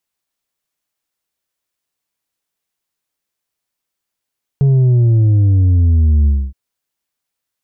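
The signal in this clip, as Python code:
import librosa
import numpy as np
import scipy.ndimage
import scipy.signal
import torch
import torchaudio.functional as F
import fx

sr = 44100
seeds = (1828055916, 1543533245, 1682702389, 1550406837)

y = fx.sub_drop(sr, level_db=-8.5, start_hz=140.0, length_s=1.92, drive_db=4.5, fade_s=0.26, end_hz=65.0)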